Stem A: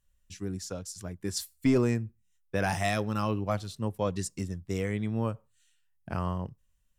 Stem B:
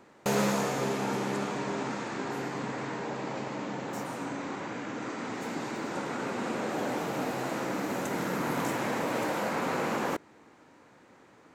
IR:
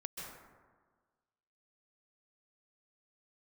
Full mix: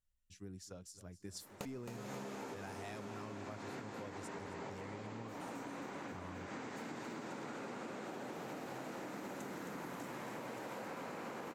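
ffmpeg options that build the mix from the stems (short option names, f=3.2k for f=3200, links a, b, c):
-filter_complex "[0:a]volume=-13.5dB,asplit=3[a][b][c];[b]volume=-16dB[d];[1:a]acompressor=threshold=-33dB:ratio=6,adelay=1350,volume=-1.5dB,asplit=2[e][f];[f]volume=-6dB[g];[c]apad=whole_len=568674[h];[e][h]sidechaincompress=threshold=-51dB:ratio=8:attack=9:release=148[i];[d][g]amix=inputs=2:normalize=0,aecho=0:1:266|532|798|1064|1330|1596|1862|2128|2394:1|0.58|0.336|0.195|0.113|0.0656|0.0381|0.0221|0.0128[j];[a][i][j]amix=inputs=3:normalize=0,acompressor=threshold=-43dB:ratio=6"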